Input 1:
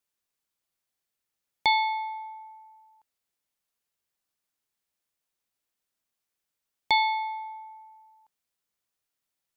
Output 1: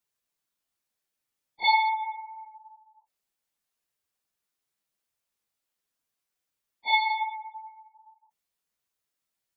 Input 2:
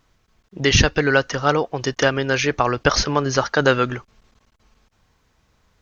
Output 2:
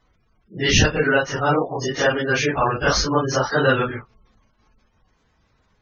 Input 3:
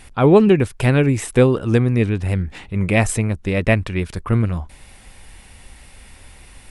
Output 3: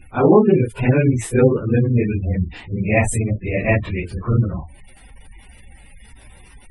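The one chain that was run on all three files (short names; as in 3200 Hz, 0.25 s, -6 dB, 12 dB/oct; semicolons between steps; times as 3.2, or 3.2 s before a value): phase scrambler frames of 0.1 s; spectral gate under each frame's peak -25 dB strong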